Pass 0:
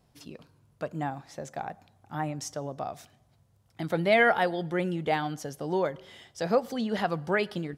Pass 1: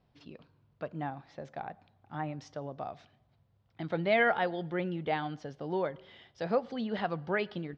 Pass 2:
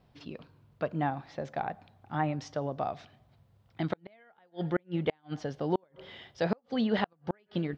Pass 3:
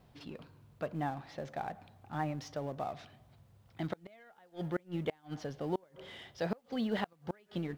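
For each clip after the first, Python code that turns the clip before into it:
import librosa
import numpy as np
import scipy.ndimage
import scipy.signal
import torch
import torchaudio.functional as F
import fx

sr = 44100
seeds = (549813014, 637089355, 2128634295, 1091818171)

y1 = scipy.signal.sosfilt(scipy.signal.butter(4, 4200.0, 'lowpass', fs=sr, output='sos'), x)
y1 = y1 * librosa.db_to_amplitude(-4.5)
y2 = fx.gate_flip(y1, sr, shuts_db=-22.0, range_db=-40)
y2 = y2 * librosa.db_to_amplitude(6.5)
y3 = fx.law_mismatch(y2, sr, coded='mu')
y3 = y3 * librosa.db_to_amplitude(-6.5)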